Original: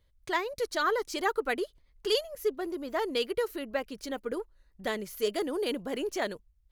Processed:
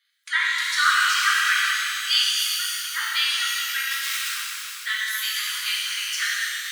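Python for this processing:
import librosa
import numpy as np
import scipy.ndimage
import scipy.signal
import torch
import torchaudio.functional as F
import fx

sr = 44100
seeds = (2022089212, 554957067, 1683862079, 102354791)

y = fx.overflow_wrap(x, sr, gain_db=34.0, at=(3.9, 4.31))
y = scipy.signal.sosfilt(scipy.signal.butter(8, 1300.0, 'highpass', fs=sr, output='sos'), y)
y = fx.spec_gate(y, sr, threshold_db=-20, keep='strong')
y = fx.rev_shimmer(y, sr, seeds[0], rt60_s=2.9, semitones=12, shimmer_db=-8, drr_db=-7.0)
y = y * librosa.db_to_amplitude(8.0)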